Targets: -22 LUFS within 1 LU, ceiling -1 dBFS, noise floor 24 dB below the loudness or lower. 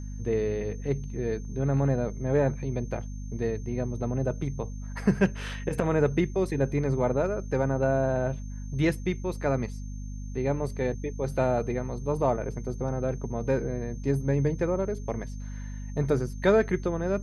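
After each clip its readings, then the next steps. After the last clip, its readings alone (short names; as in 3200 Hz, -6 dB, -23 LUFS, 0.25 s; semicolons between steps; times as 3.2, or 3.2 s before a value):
hum 50 Hz; harmonics up to 250 Hz; hum level -34 dBFS; steady tone 6300 Hz; tone level -54 dBFS; loudness -28.5 LUFS; peak -10.5 dBFS; loudness target -22.0 LUFS
-> notches 50/100/150/200/250 Hz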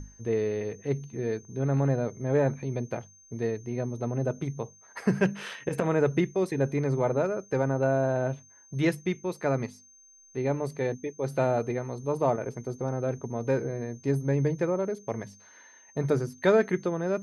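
hum none; steady tone 6300 Hz; tone level -54 dBFS
-> notch 6300 Hz, Q 30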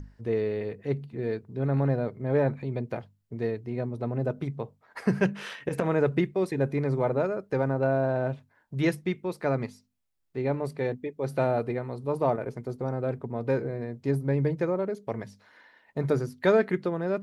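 steady tone none; loudness -29.0 LUFS; peak -11.0 dBFS; loudness target -22.0 LUFS
-> gain +7 dB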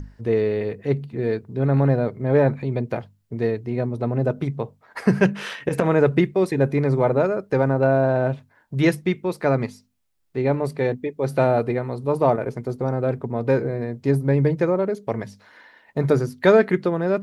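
loudness -22.0 LUFS; peak -4.0 dBFS; noise floor -60 dBFS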